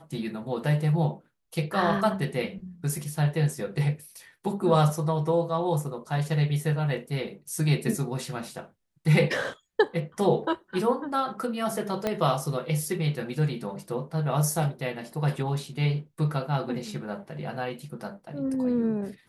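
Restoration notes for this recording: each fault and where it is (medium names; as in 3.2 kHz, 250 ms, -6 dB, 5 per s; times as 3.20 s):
12.07 s: pop -13 dBFS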